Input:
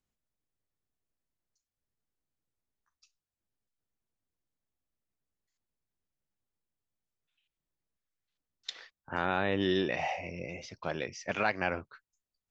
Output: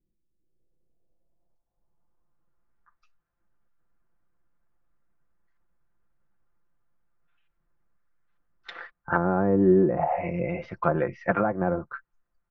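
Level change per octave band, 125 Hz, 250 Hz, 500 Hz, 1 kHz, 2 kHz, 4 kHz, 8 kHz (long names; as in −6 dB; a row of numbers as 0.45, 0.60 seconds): +12.0 dB, +11.0 dB, +9.5 dB, +7.0 dB, +0.5 dB, below −10 dB, can't be measured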